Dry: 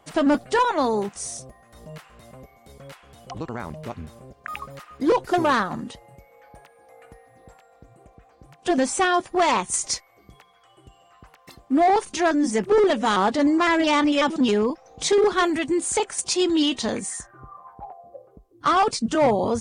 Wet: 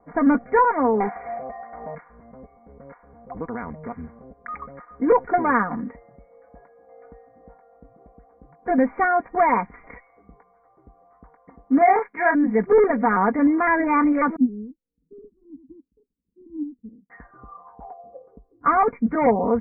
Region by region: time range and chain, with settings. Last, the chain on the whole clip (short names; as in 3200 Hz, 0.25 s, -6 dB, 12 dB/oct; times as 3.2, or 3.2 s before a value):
1–1.95 bell 740 Hz +13 dB 0.4 oct + overdrive pedal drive 16 dB, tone 6900 Hz, clips at -13.5 dBFS
11.78–12.35 gate -35 dBFS, range -16 dB + tilt +3 dB/oct + doubler 29 ms -4 dB
14.36–17.1 inverse Chebyshev low-pass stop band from 630 Hz + upward expander 2.5:1, over -35 dBFS
whole clip: low-pass opened by the level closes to 880 Hz, open at -21 dBFS; Chebyshev low-pass 2300 Hz, order 10; comb 4.2 ms, depth 66%